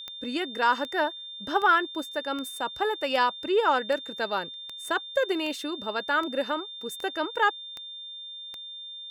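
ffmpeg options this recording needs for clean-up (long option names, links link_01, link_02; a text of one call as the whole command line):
ffmpeg -i in.wav -af "adeclick=threshold=4,bandreject=frequency=3600:width=30" out.wav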